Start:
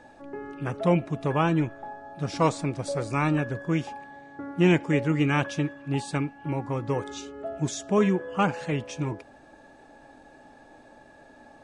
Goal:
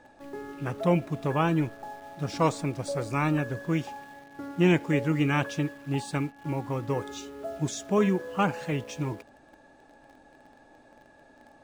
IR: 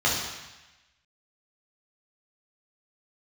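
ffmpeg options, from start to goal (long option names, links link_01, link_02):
-filter_complex "[0:a]bandreject=frequency=221.2:width_type=h:width=4,bandreject=frequency=442.4:width_type=h:width=4,asplit=2[link_01][link_02];[link_02]acrusher=bits=6:mix=0:aa=0.000001,volume=-9.5dB[link_03];[link_01][link_03]amix=inputs=2:normalize=0,volume=-4dB"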